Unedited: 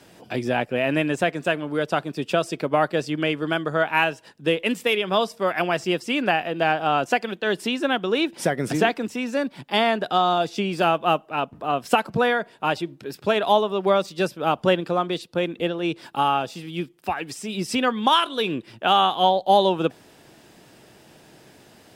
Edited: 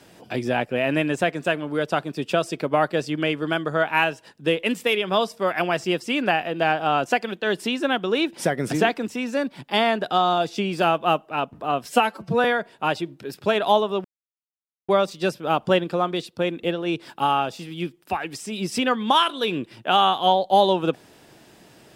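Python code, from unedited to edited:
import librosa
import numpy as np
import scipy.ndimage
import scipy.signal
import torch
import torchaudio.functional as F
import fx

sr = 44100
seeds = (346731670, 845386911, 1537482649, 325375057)

y = fx.edit(x, sr, fx.stretch_span(start_s=11.86, length_s=0.39, factor=1.5),
    fx.insert_silence(at_s=13.85, length_s=0.84), tone=tone)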